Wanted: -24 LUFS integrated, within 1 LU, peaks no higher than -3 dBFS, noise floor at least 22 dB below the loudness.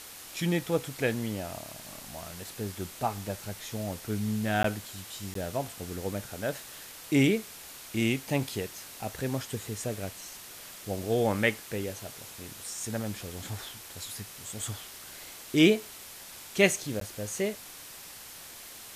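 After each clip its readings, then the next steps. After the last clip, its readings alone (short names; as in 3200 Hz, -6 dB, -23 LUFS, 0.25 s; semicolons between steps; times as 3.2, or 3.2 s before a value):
dropouts 3; longest dropout 13 ms; noise floor -46 dBFS; noise floor target -54 dBFS; loudness -31.5 LUFS; peak -7.0 dBFS; loudness target -24.0 LUFS
-> interpolate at 4.63/5.34/17, 13 ms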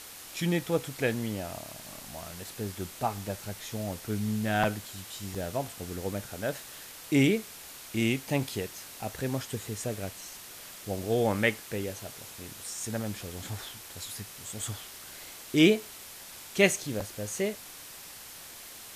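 dropouts 0; noise floor -46 dBFS; noise floor target -54 dBFS
-> noise print and reduce 8 dB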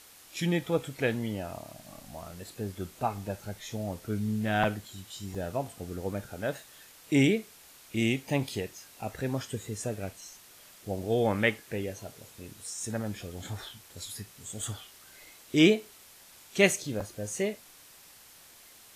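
noise floor -54 dBFS; loudness -31.0 LUFS; peak -7.0 dBFS; loudness target -24.0 LUFS
-> gain +7 dB; limiter -3 dBFS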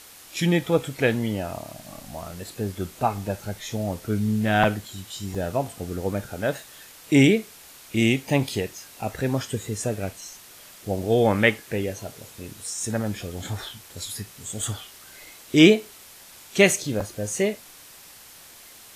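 loudness -24.5 LUFS; peak -3.0 dBFS; noise floor -47 dBFS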